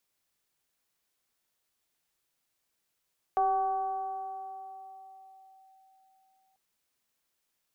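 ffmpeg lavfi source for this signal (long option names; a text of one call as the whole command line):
ffmpeg -f lavfi -i "aevalsrc='0.0794*pow(10,-3*t/4.03)*sin(2*PI*766*t+0.56*clip(1-t/2.41,0,1)*sin(2*PI*0.49*766*t))':duration=3.19:sample_rate=44100" out.wav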